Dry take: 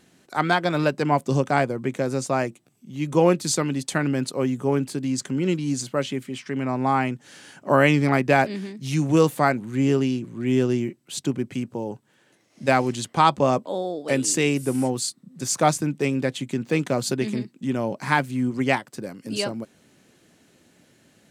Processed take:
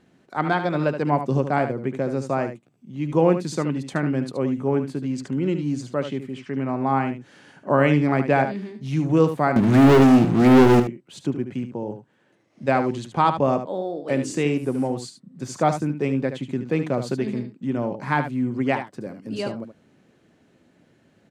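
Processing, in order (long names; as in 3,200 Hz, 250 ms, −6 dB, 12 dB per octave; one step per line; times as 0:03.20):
low-pass filter 1,500 Hz 6 dB per octave
0:09.56–0:10.80: leveller curve on the samples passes 5
single-tap delay 74 ms −9.5 dB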